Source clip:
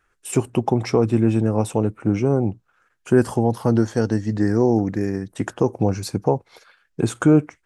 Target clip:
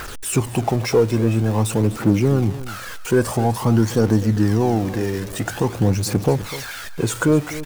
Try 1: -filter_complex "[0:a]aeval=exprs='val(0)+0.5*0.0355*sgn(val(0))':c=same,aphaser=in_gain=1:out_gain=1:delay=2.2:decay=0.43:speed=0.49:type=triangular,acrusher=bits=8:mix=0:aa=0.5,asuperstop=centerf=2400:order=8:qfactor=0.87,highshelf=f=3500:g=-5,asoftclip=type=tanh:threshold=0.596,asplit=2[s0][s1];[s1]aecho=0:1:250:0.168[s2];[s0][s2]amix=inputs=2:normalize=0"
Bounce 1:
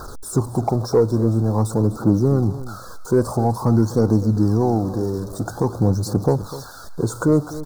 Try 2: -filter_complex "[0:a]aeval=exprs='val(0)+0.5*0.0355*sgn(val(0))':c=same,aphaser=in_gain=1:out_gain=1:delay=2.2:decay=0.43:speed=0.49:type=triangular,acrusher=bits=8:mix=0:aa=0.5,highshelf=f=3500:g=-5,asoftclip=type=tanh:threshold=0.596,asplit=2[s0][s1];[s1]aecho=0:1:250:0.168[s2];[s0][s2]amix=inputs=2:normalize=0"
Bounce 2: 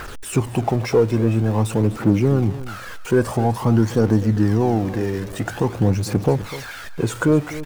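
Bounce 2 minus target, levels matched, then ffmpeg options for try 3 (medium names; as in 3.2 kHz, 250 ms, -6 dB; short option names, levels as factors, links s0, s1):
8 kHz band -6.0 dB
-filter_complex "[0:a]aeval=exprs='val(0)+0.5*0.0355*sgn(val(0))':c=same,aphaser=in_gain=1:out_gain=1:delay=2.2:decay=0.43:speed=0.49:type=triangular,acrusher=bits=8:mix=0:aa=0.5,highshelf=f=3500:g=2.5,asoftclip=type=tanh:threshold=0.596,asplit=2[s0][s1];[s1]aecho=0:1:250:0.168[s2];[s0][s2]amix=inputs=2:normalize=0"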